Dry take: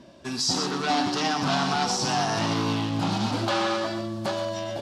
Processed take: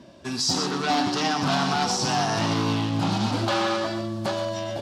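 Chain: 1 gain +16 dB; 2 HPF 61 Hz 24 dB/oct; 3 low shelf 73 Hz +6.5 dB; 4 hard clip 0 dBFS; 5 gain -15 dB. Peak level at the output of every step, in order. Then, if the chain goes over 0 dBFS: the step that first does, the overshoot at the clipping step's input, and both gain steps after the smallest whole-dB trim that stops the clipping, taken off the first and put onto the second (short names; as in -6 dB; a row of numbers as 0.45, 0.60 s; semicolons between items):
+3.0, +3.5, +3.5, 0.0, -15.0 dBFS; step 1, 3.5 dB; step 1 +12 dB, step 5 -11 dB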